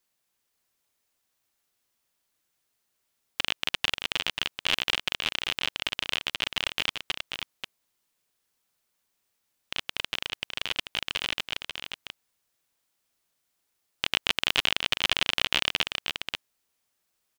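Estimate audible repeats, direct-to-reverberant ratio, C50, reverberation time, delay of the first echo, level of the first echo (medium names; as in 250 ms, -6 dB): 1, no reverb, no reverb, no reverb, 536 ms, -6.5 dB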